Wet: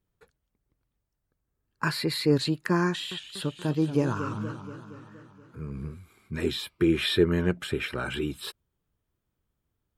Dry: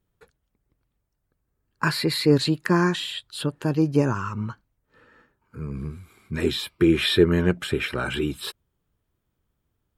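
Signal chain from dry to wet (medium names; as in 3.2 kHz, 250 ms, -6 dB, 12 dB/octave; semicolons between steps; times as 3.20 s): 2.88–5.94 s: modulated delay 236 ms, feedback 62%, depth 148 cents, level -11 dB; trim -4.5 dB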